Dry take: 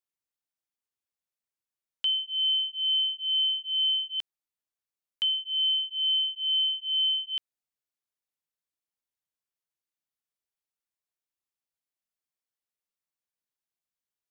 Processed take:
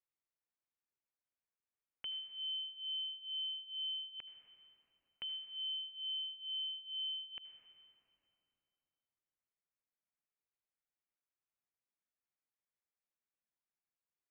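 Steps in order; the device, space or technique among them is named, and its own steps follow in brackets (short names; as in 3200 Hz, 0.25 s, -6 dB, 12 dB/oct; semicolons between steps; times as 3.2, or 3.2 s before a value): steep low-pass 2600 Hz 48 dB/oct; compressed reverb return (on a send at -6.5 dB: reverb RT60 3.2 s, pre-delay 71 ms + compressor, threshold -39 dBFS, peak gain reduction 6.5 dB); on the sum: gain -4.5 dB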